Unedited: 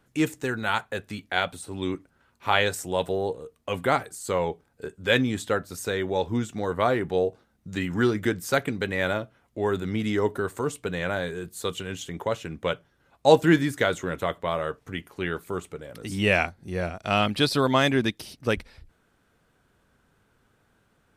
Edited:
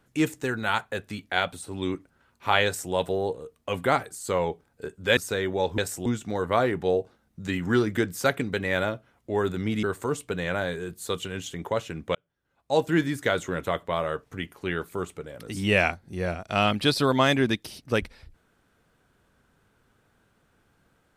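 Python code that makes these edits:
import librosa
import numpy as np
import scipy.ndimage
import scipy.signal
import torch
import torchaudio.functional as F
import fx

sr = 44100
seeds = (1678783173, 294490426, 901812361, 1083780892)

y = fx.edit(x, sr, fx.duplicate(start_s=2.65, length_s=0.28, to_s=6.34),
    fx.cut(start_s=5.17, length_s=0.56),
    fx.cut(start_s=10.11, length_s=0.27),
    fx.fade_in_span(start_s=12.7, length_s=1.32), tone=tone)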